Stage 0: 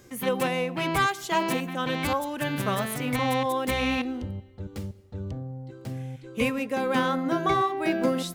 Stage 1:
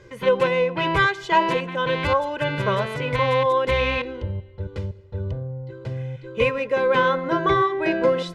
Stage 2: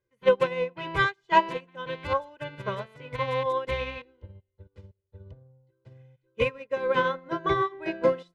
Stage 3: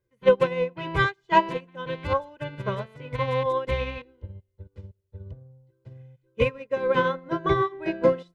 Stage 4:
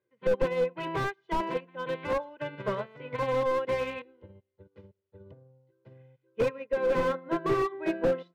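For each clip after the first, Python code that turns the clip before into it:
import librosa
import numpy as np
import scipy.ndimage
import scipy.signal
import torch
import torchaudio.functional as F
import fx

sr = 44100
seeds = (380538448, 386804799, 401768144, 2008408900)

y1 = scipy.signal.sosfilt(scipy.signal.butter(2, 3400.0, 'lowpass', fs=sr, output='sos'), x)
y1 = y1 + 0.75 * np.pad(y1, (int(2.0 * sr / 1000.0), 0))[:len(y1)]
y1 = y1 * 10.0 ** (4.0 / 20.0)
y2 = fx.upward_expand(y1, sr, threshold_db=-37.0, expansion=2.5)
y3 = fx.low_shelf(y2, sr, hz=390.0, db=7.0)
y4 = fx.bandpass_edges(y3, sr, low_hz=220.0, high_hz=3100.0)
y4 = fx.slew_limit(y4, sr, full_power_hz=42.0)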